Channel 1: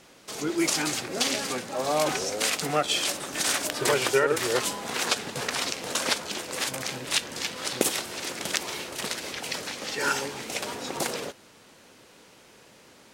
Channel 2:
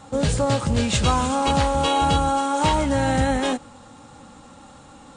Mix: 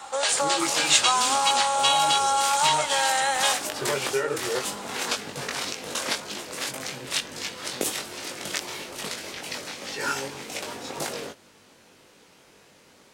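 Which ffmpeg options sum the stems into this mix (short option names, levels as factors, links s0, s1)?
-filter_complex "[0:a]flanger=delay=19.5:depth=2.8:speed=1.9,volume=1.19[s0];[1:a]highpass=f=710:w=0.5412,highpass=f=710:w=1.3066,acontrast=45,volume=1.19[s1];[s0][s1]amix=inputs=2:normalize=0,acrossover=split=130|3000[s2][s3][s4];[s3]acompressor=threshold=0.0631:ratio=2.5[s5];[s2][s5][s4]amix=inputs=3:normalize=0"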